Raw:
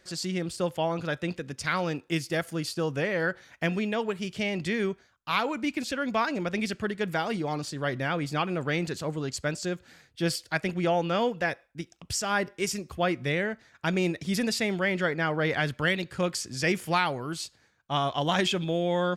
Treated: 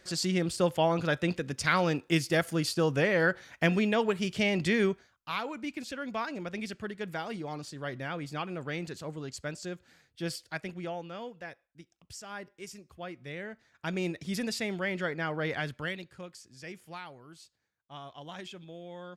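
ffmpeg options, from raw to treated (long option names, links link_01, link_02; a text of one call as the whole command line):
ffmpeg -i in.wav -af "volume=11.5dB,afade=type=out:start_time=4.84:duration=0.51:silence=0.334965,afade=type=out:start_time=10.43:duration=0.69:silence=0.421697,afade=type=in:start_time=13.22:duration=0.84:silence=0.334965,afade=type=out:start_time=15.52:duration=0.75:silence=0.237137" out.wav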